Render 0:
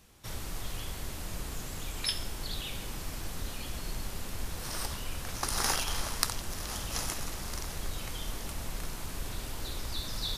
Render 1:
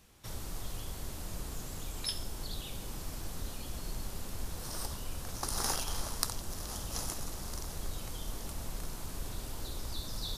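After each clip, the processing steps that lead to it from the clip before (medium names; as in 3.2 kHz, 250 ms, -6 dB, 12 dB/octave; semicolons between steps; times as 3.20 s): dynamic bell 2.2 kHz, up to -8 dB, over -53 dBFS, Q 0.94; trim -2 dB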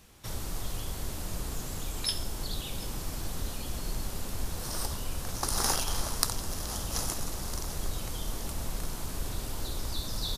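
delay 740 ms -17.5 dB; trim +5 dB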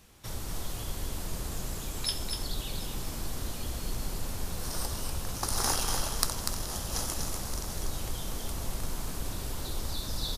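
delay 243 ms -5 dB; trim -1 dB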